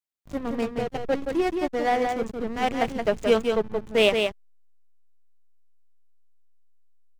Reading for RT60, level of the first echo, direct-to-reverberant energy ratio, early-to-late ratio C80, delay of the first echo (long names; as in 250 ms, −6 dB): no reverb audible, −5.0 dB, no reverb audible, no reverb audible, 174 ms